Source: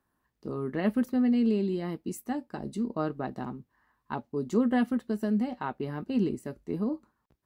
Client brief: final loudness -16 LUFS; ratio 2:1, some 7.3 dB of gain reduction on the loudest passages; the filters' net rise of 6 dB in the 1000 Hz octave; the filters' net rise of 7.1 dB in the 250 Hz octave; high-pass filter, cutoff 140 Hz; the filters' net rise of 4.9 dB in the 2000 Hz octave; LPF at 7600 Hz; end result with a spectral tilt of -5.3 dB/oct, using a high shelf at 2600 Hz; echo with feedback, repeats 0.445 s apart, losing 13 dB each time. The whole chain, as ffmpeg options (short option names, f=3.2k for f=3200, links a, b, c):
-af "highpass=140,lowpass=7.6k,equalizer=f=250:t=o:g=8,equalizer=f=1k:t=o:g=7,equalizer=f=2k:t=o:g=5,highshelf=f=2.6k:g=-4,acompressor=threshold=-28dB:ratio=2,aecho=1:1:445|890|1335:0.224|0.0493|0.0108,volume=13.5dB"